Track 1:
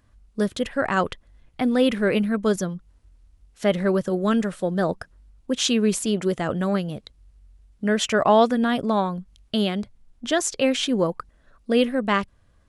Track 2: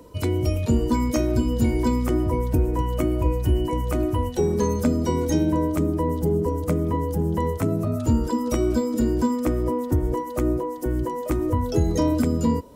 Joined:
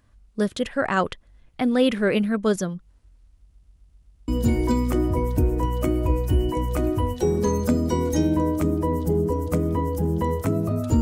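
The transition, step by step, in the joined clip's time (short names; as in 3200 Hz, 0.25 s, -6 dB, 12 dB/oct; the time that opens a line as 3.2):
track 1
3.37 stutter in place 0.13 s, 7 plays
4.28 switch to track 2 from 1.44 s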